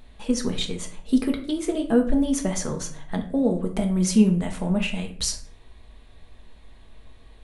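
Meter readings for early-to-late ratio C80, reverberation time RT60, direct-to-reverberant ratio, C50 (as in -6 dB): 14.5 dB, 0.50 s, 3.0 dB, 10.5 dB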